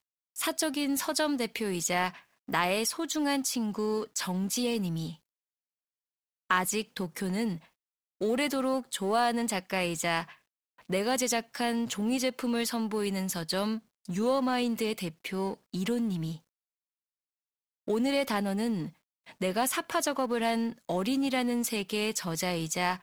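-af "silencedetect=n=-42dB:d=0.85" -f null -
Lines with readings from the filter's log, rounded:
silence_start: 5.14
silence_end: 6.50 | silence_duration: 1.36
silence_start: 16.37
silence_end: 17.88 | silence_duration: 1.51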